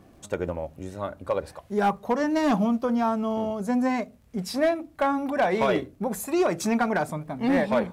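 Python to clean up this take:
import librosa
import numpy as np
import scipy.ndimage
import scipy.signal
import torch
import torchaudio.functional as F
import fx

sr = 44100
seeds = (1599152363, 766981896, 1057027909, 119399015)

y = fx.fix_declip(x, sr, threshold_db=-16.0)
y = fx.fix_declick_ar(y, sr, threshold=6.5)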